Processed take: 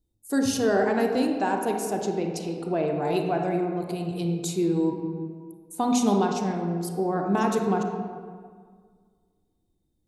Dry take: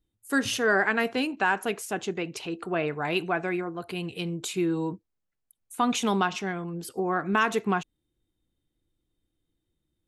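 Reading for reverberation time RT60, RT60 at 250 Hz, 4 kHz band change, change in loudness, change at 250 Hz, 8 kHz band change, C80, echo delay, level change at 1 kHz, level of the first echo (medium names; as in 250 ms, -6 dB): 1.8 s, 2.0 s, -4.0 dB, +2.0 dB, +5.0 dB, +2.0 dB, 5.5 dB, no echo, +1.0 dB, no echo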